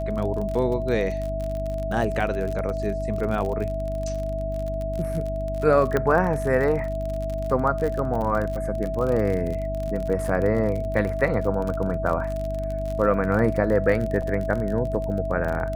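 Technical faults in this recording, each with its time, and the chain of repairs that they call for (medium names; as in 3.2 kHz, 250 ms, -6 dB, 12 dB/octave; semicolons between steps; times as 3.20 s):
crackle 40 per s -28 dBFS
hum 50 Hz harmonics 6 -30 dBFS
whine 650 Hz -28 dBFS
5.97 s: pop -11 dBFS
14.22 s: dropout 4.6 ms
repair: de-click; de-hum 50 Hz, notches 6; band-stop 650 Hz, Q 30; interpolate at 14.22 s, 4.6 ms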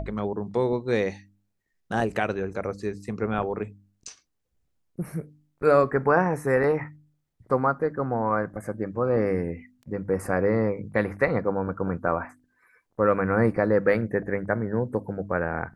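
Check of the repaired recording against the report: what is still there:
nothing left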